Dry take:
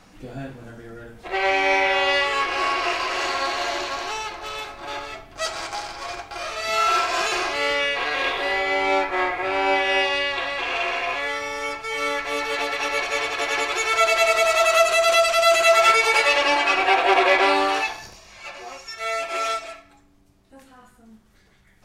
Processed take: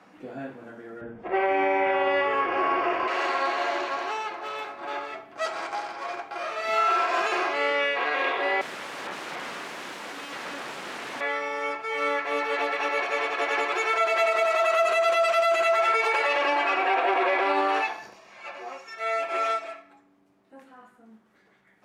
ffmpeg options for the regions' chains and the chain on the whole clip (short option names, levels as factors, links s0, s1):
-filter_complex "[0:a]asettb=1/sr,asplit=3[s0][s1][s2];[s0]atrim=end=1.014[s3];[s1]atrim=start=1.01:end=3.08,asetpts=PTS-STARTPTS,afade=t=in:d=0.004:c=qsin,afade=t=out:st=2.066:d=0.004:c=qsin,aemphasis=mode=reproduction:type=riaa,bandreject=f=4000:w=5.8[s4];[s2]atrim=start=3.076[s5];[s3][s4]acrossfade=d=0.004:c1=hsin:c2=qsin[s6];[s6][s5]acrossfade=d=0.004:c1=qsin:c2=hsin,asettb=1/sr,asplit=3[s7][s8][s9];[s7]atrim=end=8.614[s10];[s8]atrim=start=8.61:end=11.21,asetpts=PTS-STARTPTS,afade=t=in:d=0.004:c=qsin,afade=t=out:st=2.596:d=0.004:c=qsin,aeval=exprs='(mod(17.8*val(0)+1,2)-1)/17.8':c=same,adynamicsmooth=sensitivity=2.5:basefreq=6000[s11];[s9]atrim=start=11.206[s12];[s10][s11]acrossfade=d=0.004:c1=hsin:c2=qsin[s13];[s13][s12]acrossfade=d=0.004:c1=qsin:c2=hsin,highpass=f=120:p=1,acrossover=split=170 2500:gain=0.0891 1 0.224[s14][s15][s16];[s14][s15][s16]amix=inputs=3:normalize=0,alimiter=limit=0.178:level=0:latency=1:release=48"